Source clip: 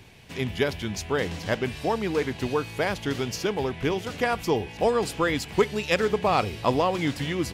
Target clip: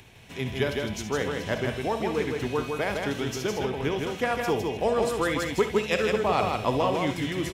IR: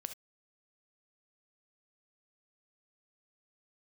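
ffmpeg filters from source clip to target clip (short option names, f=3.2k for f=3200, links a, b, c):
-filter_complex "[0:a]bandreject=f=4.7k:w=8.2,acrossover=split=520[a][b];[b]acompressor=mode=upward:threshold=-49dB:ratio=2.5[c];[a][c]amix=inputs=2:normalize=0,aecho=1:1:158:0.631[d];[1:a]atrim=start_sample=2205[e];[d][e]afir=irnorm=-1:irlink=0"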